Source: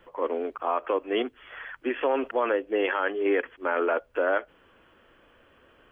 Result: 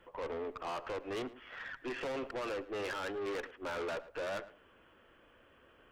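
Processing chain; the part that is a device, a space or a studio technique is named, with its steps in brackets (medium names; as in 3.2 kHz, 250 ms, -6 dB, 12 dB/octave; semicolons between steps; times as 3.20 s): 1.59–2.12 s: comb 7.4 ms, depth 41%; rockabilly slapback (valve stage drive 32 dB, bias 0.4; tape echo 109 ms, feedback 20%, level -14 dB, low-pass 2 kHz); trim -3.5 dB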